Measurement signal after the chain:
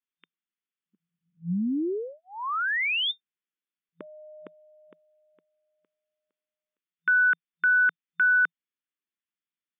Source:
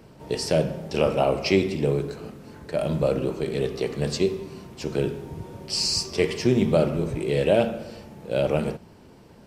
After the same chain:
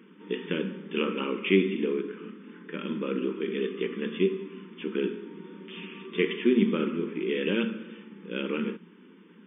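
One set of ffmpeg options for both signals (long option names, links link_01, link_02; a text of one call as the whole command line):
ffmpeg -i in.wav -af "asuperstop=centerf=680:order=4:qfactor=0.94,afftfilt=real='re*between(b*sr/4096,170,3600)':imag='im*between(b*sr/4096,170,3600)':win_size=4096:overlap=0.75" out.wav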